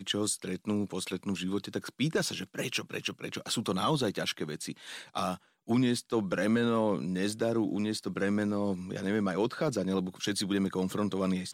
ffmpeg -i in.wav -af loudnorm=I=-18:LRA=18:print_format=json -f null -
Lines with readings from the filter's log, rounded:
"input_i" : "-31.6",
"input_tp" : "-18.6",
"input_lra" : "2.3",
"input_thresh" : "-41.6",